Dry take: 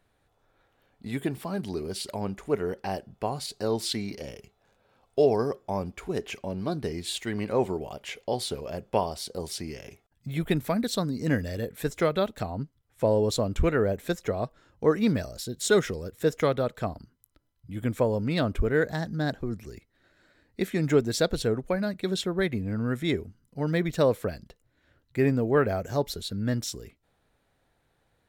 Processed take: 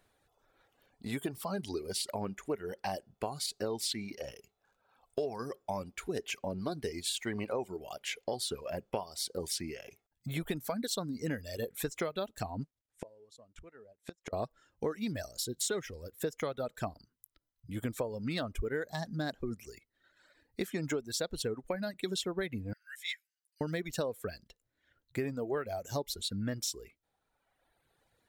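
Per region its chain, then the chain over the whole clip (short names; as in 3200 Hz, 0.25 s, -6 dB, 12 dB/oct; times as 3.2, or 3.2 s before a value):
12.61–14.33 G.711 law mismatch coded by A + LPF 11000 Hz 24 dB/oct + flipped gate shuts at -24 dBFS, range -28 dB
22.73–23.61 steep high-pass 1600 Hz 72 dB/oct + ensemble effect
whole clip: reverb removal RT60 1.3 s; tone controls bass -4 dB, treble +4 dB; compressor 10:1, threshold -31 dBFS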